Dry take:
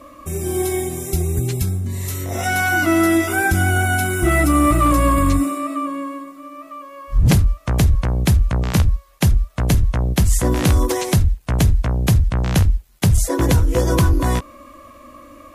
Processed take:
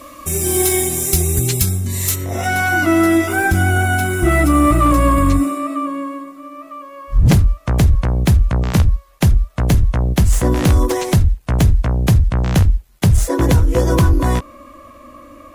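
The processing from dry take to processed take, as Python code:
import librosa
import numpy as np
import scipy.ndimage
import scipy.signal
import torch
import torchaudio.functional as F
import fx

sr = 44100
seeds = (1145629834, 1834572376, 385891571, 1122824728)

y = fx.tracing_dist(x, sr, depth_ms=0.025)
y = fx.high_shelf(y, sr, hz=2300.0, db=fx.steps((0.0, 10.5), (2.14, -3.5)))
y = F.gain(torch.from_numpy(y), 2.5).numpy()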